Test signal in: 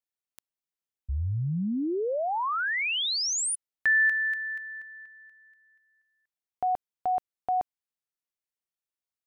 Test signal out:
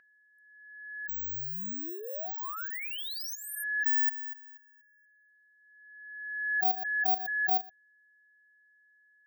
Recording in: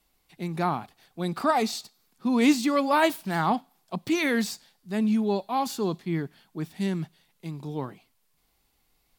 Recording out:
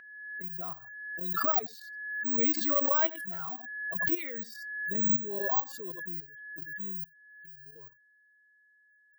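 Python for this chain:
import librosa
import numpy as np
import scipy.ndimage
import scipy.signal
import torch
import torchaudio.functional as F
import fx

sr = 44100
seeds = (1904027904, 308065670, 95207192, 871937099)

y = fx.bin_expand(x, sr, power=2.0)
y = fx.lowpass(y, sr, hz=2200.0, slope=6)
y = (np.kron(scipy.signal.resample_poly(y, 1, 2), np.eye(2)[0]) * 2)[:len(y)]
y = fx.highpass(y, sr, hz=470.0, slope=6)
y = y + 10.0 ** (-20.5 / 20.0) * np.pad(y, (int(85 * sr / 1000.0), 0))[:len(y)]
y = fx.noise_reduce_blind(y, sr, reduce_db=21)
y = fx.level_steps(y, sr, step_db=12)
y = y + 10.0 ** (-52.0 / 20.0) * np.sin(2.0 * np.pi * 1700.0 * np.arange(len(y)) / sr)
y = fx.notch_comb(y, sr, f0_hz=860.0)
y = fx.pre_swell(y, sr, db_per_s=37.0)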